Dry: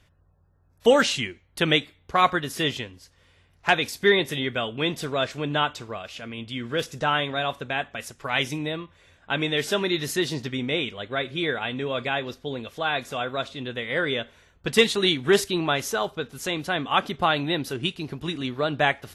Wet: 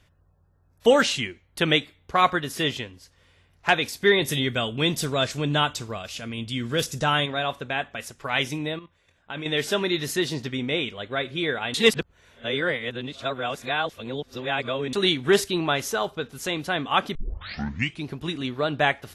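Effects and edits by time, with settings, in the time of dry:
4.22–7.26 s: tone controls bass +6 dB, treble +10 dB
8.74–9.46 s: level held to a coarse grid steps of 11 dB
11.74–14.93 s: reverse
17.15 s: tape start 0.91 s

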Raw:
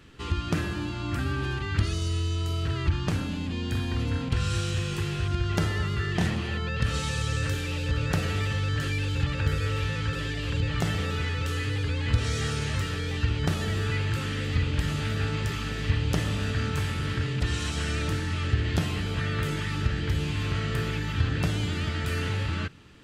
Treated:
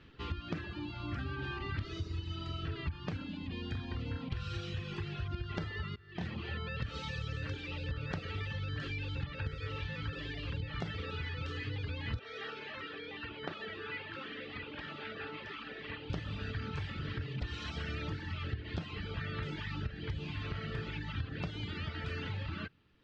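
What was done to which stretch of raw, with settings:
1.34–2.71 s: reverb throw, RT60 2.3 s, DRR 2.5 dB
5.96–6.51 s: fade in, from -19 dB
12.19–16.10 s: three-band isolator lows -22 dB, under 250 Hz, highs -17 dB, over 4.1 kHz
whole clip: low-pass 4.6 kHz 24 dB/octave; reverb removal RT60 1.3 s; compression 5:1, threshold -29 dBFS; trim -5 dB

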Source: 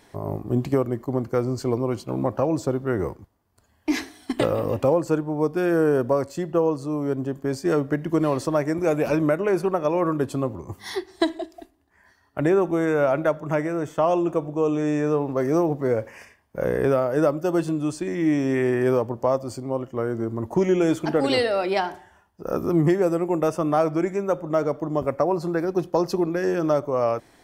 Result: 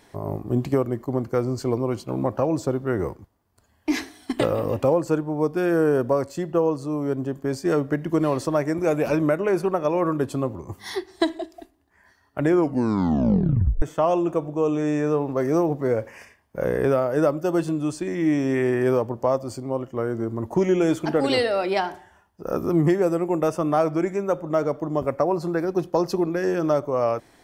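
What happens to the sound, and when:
12.44 s: tape stop 1.38 s

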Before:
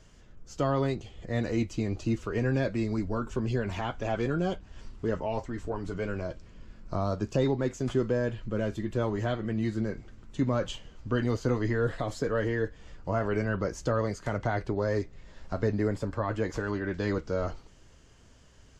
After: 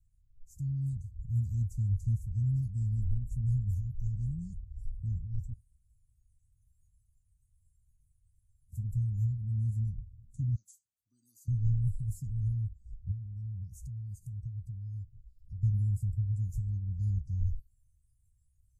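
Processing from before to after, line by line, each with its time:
5.53–8.72 s: room tone
10.55–11.48 s: high-pass 760 Hz
13.11–15.63 s: compression 2:1, threshold -41 dBFS
whole clip: inverse Chebyshev band-stop 440–3000 Hz, stop band 70 dB; spectral noise reduction 18 dB; trim +7.5 dB

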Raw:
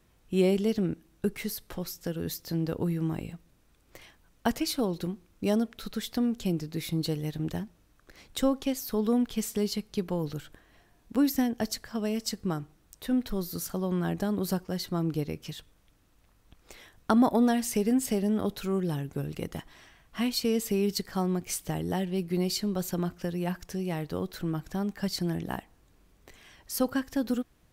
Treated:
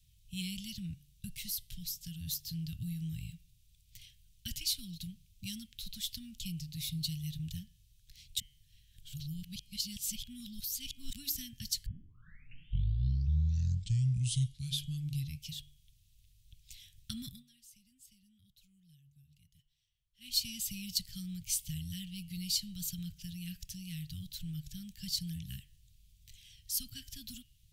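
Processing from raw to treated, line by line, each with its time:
8.40–11.13 s: reverse
11.86 s: tape start 3.55 s
17.27–20.36 s: dip -23.5 dB, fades 0.16 s
whole clip: elliptic band-stop 130–3100 Hz, stop band 70 dB; de-hum 144.2 Hz, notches 23; trim +1 dB

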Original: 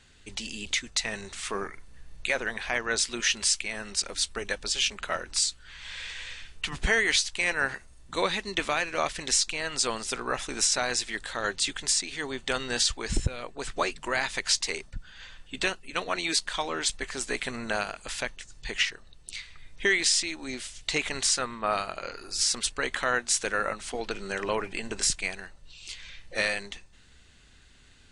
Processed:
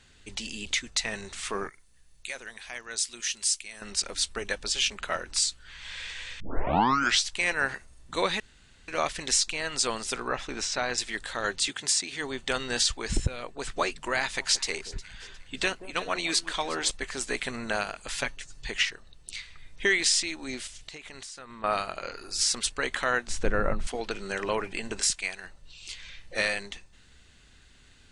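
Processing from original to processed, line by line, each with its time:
1.69–3.82 s: pre-emphasis filter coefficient 0.8
6.40 s: tape start 0.86 s
8.40–8.88 s: room tone
10.28–10.98 s: distance through air 110 m
11.67–12.19 s: high-pass 120 Hz -> 56 Hz 24 dB/octave
14.20–16.91 s: echo whose repeats swap between lows and highs 179 ms, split 960 Hz, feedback 58%, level -12.5 dB
18.12–18.66 s: comb 7.2 ms, depth 62%
20.67–21.64 s: compression 8:1, threshold -40 dBFS
23.27–23.87 s: tilt EQ -4 dB/octave
25.00–25.44 s: bass shelf 500 Hz -9 dB

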